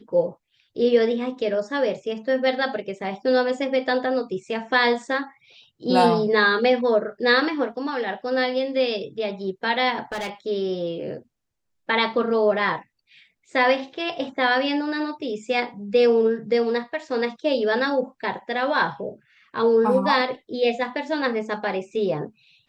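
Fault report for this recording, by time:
10.02–10.3 clipped -26 dBFS

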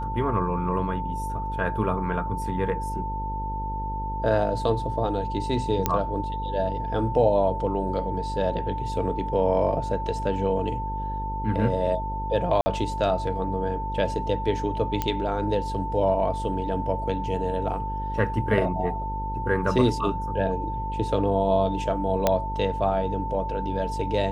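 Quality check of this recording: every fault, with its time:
buzz 50 Hz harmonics 11 -32 dBFS
tone 890 Hz -30 dBFS
5.86 pop -7 dBFS
12.61–12.66 gap 50 ms
15.02 pop -11 dBFS
22.27 pop -6 dBFS

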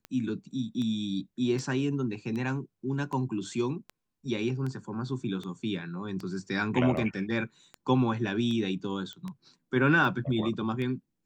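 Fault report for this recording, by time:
tick 78 rpm -25 dBFS
9.13 pop -27 dBFS

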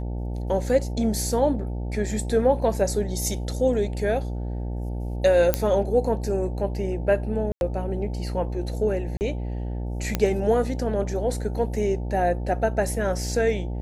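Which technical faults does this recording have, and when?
buzz 60 Hz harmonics 15 -29 dBFS
5.54 pop -5 dBFS
7.52–7.61 gap 91 ms
9.17–9.21 gap 39 ms
10.15 pop -8 dBFS

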